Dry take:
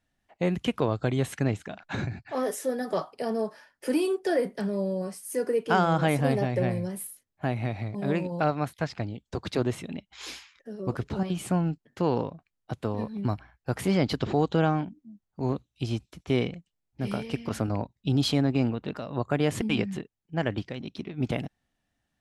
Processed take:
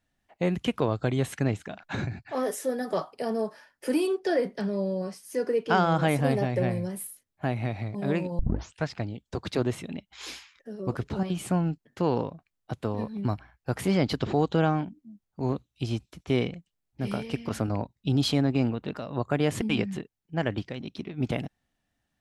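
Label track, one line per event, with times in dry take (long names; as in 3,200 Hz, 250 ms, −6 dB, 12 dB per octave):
4.070000	5.950000	high shelf with overshoot 6,900 Hz −6.5 dB, Q 1.5
8.390000	8.390000	tape start 0.45 s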